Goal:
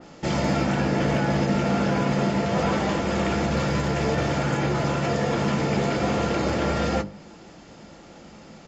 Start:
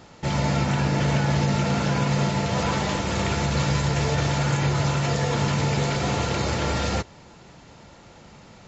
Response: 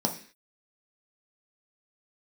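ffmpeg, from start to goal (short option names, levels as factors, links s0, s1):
-filter_complex "[0:a]equalizer=f=320:t=o:w=0.32:g=5,bandreject=f=50:t=h:w=6,bandreject=f=100:t=h:w=6,bandreject=f=150:t=h:w=6,bandreject=f=200:t=h:w=6,bandreject=f=250:t=h:w=6,bandreject=f=300:t=h:w=6,volume=6.31,asoftclip=hard,volume=0.158,asplit=2[s0][s1];[s1]adelay=19,volume=0.224[s2];[s0][s2]amix=inputs=2:normalize=0,asplit=2[s3][s4];[1:a]atrim=start_sample=2205,asetrate=39249,aresample=44100[s5];[s4][s5]afir=irnorm=-1:irlink=0,volume=0.1[s6];[s3][s6]amix=inputs=2:normalize=0,adynamicequalizer=threshold=0.00631:dfrequency=3100:dqfactor=0.7:tfrequency=3100:tqfactor=0.7:attack=5:release=100:ratio=0.375:range=3.5:mode=cutabove:tftype=highshelf"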